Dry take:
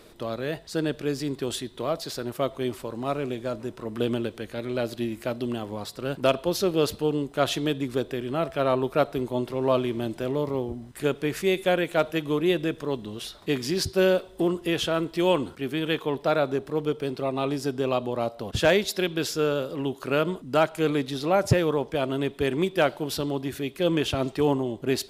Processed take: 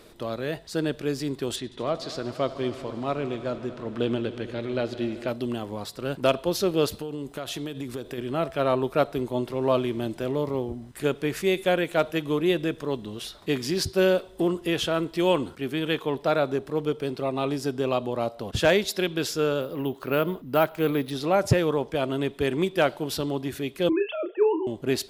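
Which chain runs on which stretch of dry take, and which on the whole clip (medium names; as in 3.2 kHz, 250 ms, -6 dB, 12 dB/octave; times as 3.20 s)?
1.56–5.28 s: low-pass 5.8 kHz + multi-head delay 77 ms, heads all three, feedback 73%, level -20 dB
6.88–8.18 s: treble shelf 7.3 kHz +5.5 dB + compression 16:1, threshold -28 dBFS
19.61–21.11 s: treble shelf 6.2 kHz -10 dB + careless resampling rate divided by 3×, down filtered, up hold
23.89–24.67 s: formants replaced by sine waves + doubling 32 ms -9 dB + de-hum 229.6 Hz, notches 28
whole clip: none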